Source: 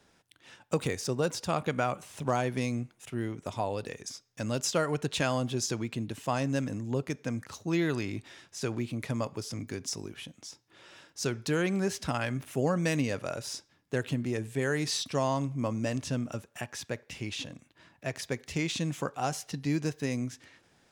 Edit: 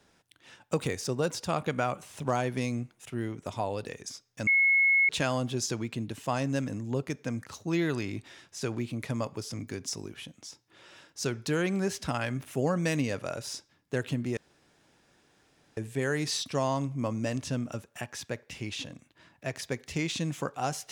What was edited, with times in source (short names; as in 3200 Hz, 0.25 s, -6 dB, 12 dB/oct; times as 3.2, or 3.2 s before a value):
4.47–5.09 bleep 2180 Hz -19.5 dBFS
14.37 insert room tone 1.40 s